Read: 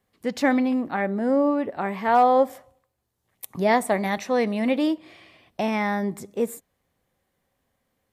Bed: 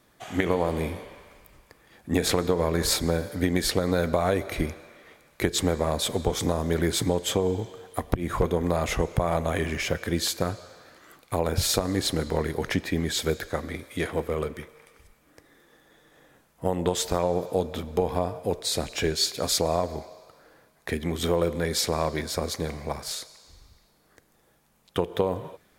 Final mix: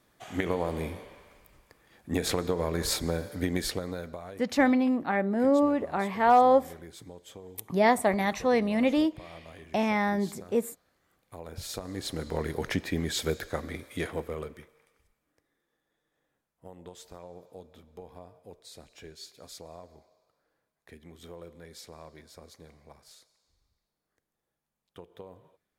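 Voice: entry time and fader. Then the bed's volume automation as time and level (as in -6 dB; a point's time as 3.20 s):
4.15 s, -2.0 dB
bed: 3.61 s -5 dB
4.41 s -22 dB
11.05 s -22 dB
12.51 s -3.5 dB
13.96 s -3.5 dB
15.61 s -21.5 dB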